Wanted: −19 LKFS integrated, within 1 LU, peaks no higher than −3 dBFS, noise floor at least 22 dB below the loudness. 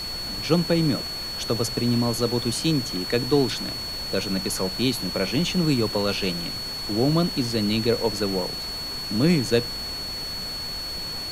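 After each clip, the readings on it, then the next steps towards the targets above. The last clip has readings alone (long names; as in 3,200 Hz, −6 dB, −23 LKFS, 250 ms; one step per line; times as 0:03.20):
interfering tone 4,400 Hz; level of the tone −30 dBFS; background noise floor −32 dBFS; target noise floor −47 dBFS; integrated loudness −24.5 LKFS; sample peak −6.5 dBFS; target loudness −19.0 LKFS
→ notch filter 4,400 Hz, Q 30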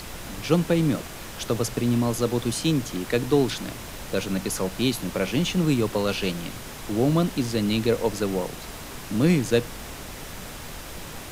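interfering tone none found; background noise floor −38 dBFS; target noise floor −47 dBFS
→ noise reduction from a noise print 9 dB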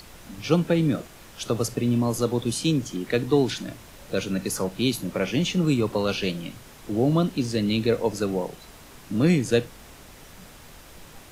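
background noise floor −47 dBFS; integrated loudness −25.0 LKFS; sample peak −6.5 dBFS; target loudness −19.0 LKFS
→ level +6 dB
brickwall limiter −3 dBFS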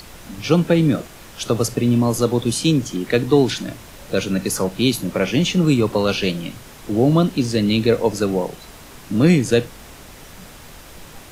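integrated loudness −19.0 LKFS; sample peak −3.0 dBFS; background noise floor −41 dBFS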